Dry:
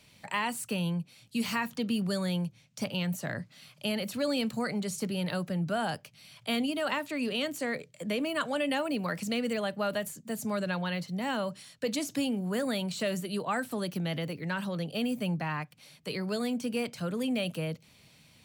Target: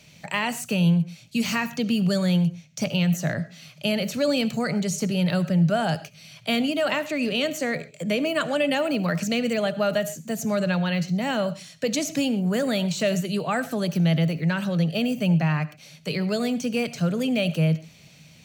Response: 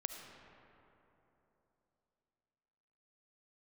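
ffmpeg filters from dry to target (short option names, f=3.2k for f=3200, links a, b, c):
-filter_complex "[0:a]equalizer=f=160:t=o:w=0.33:g=10,equalizer=f=630:t=o:w=0.33:g=4,equalizer=f=1k:t=o:w=0.33:g=-5,equalizer=f=2.5k:t=o:w=0.33:g=3,equalizer=f=6.3k:t=o:w=0.33:g=8,equalizer=f=10k:t=o:w=0.33:g=-7,asplit=2[a][b];[1:a]atrim=start_sample=2205,atrim=end_sample=6174[c];[b][c]afir=irnorm=-1:irlink=0,volume=1dB[d];[a][d]amix=inputs=2:normalize=0"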